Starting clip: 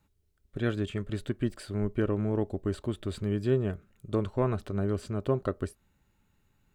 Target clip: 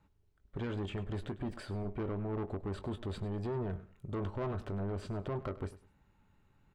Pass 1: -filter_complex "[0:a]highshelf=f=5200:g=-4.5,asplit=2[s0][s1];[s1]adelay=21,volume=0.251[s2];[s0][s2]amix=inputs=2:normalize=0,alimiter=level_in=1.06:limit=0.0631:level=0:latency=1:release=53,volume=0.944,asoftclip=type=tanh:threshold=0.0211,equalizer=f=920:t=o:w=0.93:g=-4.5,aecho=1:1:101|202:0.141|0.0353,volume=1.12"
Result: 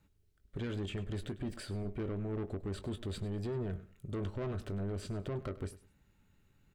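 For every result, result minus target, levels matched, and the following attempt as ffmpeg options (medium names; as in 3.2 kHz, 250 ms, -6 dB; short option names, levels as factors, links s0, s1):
8 kHz band +8.0 dB; 1 kHz band -5.5 dB
-filter_complex "[0:a]highshelf=f=5200:g=-15.5,asplit=2[s0][s1];[s1]adelay=21,volume=0.251[s2];[s0][s2]amix=inputs=2:normalize=0,alimiter=level_in=1.06:limit=0.0631:level=0:latency=1:release=53,volume=0.944,asoftclip=type=tanh:threshold=0.0211,equalizer=f=920:t=o:w=0.93:g=-4.5,aecho=1:1:101|202:0.141|0.0353,volume=1.12"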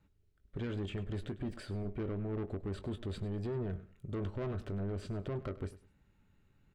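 1 kHz band -5.5 dB
-filter_complex "[0:a]highshelf=f=5200:g=-15.5,asplit=2[s0][s1];[s1]adelay=21,volume=0.251[s2];[s0][s2]amix=inputs=2:normalize=0,alimiter=level_in=1.06:limit=0.0631:level=0:latency=1:release=53,volume=0.944,asoftclip=type=tanh:threshold=0.0211,equalizer=f=920:t=o:w=0.93:g=3.5,aecho=1:1:101|202:0.141|0.0353,volume=1.12"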